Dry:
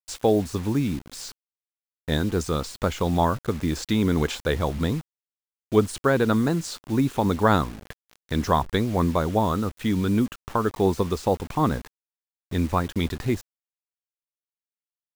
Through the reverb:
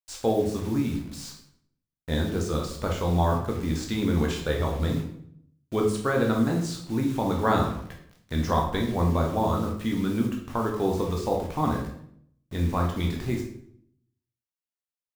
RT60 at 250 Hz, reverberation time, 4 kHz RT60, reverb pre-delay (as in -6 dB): 0.85 s, 0.65 s, 0.50 s, 13 ms